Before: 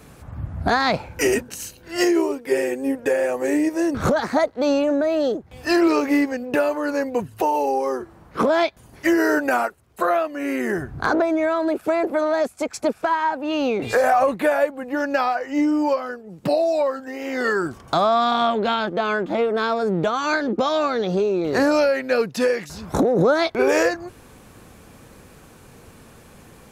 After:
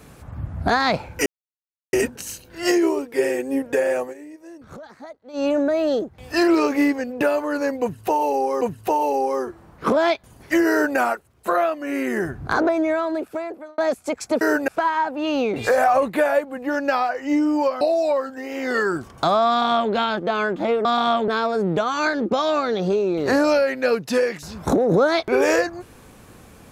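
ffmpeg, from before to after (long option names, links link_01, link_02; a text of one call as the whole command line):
ffmpeg -i in.wav -filter_complex "[0:a]asplit=11[link_01][link_02][link_03][link_04][link_05][link_06][link_07][link_08][link_09][link_10][link_11];[link_01]atrim=end=1.26,asetpts=PTS-STARTPTS,afade=type=out:start_time=1.256:duration=0.004:curve=hsin,apad=pad_dur=0.67[link_12];[link_02]atrim=start=1.26:end=3.47,asetpts=PTS-STARTPTS,afade=type=in:duration=0.004:curve=hsin,afade=type=out:start_time=2.07:duration=0.14:silence=0.1[link_13];[link_03]atrim=start=3.47:end=4.66,asetpts=PTS-STARTPTS,volume=-20dB[link_14];[link_04]atrim=start=4.66:end=7.942,asetpts=PTS-STARTPTS,afade=type=in:duration=0.14:silence=0.1[link_15];[link_05]atrim=start=7.138:end=12.31,asetpts=PTS-STARTPTS,afade=type=out:start_time=4.252:duration=0.92[link_16];[link_06]atrim=start=12.31:end=12.942,asetpts=PTS-STARTPTS,afade=type=in:duration=0.004:curve=hsin[link_17];[link_07]atrim=start=9.228:end=9.502[link_18];[link_08]atrim=start=12.938:end=16.072[link_19];[link_09]atrim=start=16.508:end=19.552[link_20];[link_10]atrim=start=18.188:end=18.622[link_21];[link_11]atrim=start=19.548[link_22];[link_12][link_13][link_14][link_15]concat=n=4:v=0:a=1[link_23];[link_16][link_17]concat=n=2:v=0:a=1[link_24];[link_23][link_24]acrossfade=duration=0.004:curve1=hsin:curve2=hsin[link_25];[link_25][link_18]acrossfade=duration=0.004:curve1=hsin:curve2=hsin[link_26];[link_26][link_19]acrossfade=duration=0.004:curve1=hsin:curve2=hsin[link_27];[link_27][link_20]acrossfade=duration=0.004:curve1=hsin:curve2=hsin[link_28];[link_28][link_21]acrossfade=duration=0.004:curve1=hsin:curve2=hsin[link_29];[link_29][link_22]acrossfade=duration=0.004:curve1=hsin:curve2=hsin" out.wav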